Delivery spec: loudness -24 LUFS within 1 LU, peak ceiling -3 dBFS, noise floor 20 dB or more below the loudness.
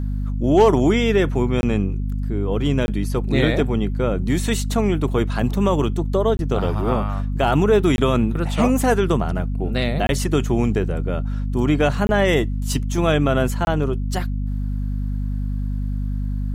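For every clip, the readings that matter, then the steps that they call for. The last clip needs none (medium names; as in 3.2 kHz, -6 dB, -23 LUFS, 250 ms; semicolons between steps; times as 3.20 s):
dropouts 7; longest dropout 21 ms; hum 50 Hz; highest harmonic 250 Hz; hum level -21 dBFS; loudness -20.5 LUFS; peak level -2.0 dBFS; loudness target -24.0 LUFS
-> interpolate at 1.61/2.86/6.37/7.96/10.07/12.07/13.65 s, 21 ms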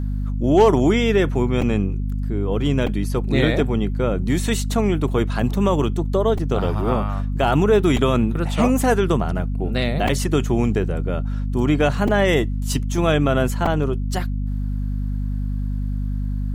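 dropouts 0; hum 50 Hz; highest harmonic 250 Hz; hum level -21 dBFS
-> hum notches 50/100/150/200/250 Hz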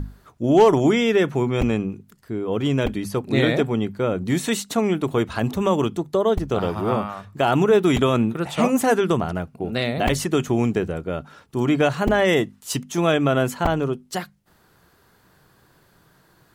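hum not found; loudness -21.5 LUFS; peak level -4.0 dBFS; loudness target -24.0 LUFS
-> trim -2.5 dB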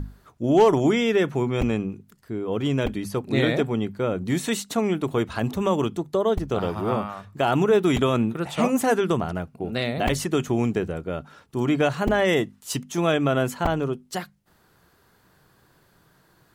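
loudness -24.0 LUFS; peak level -6.5 dBFS; noise floor -61 dBFS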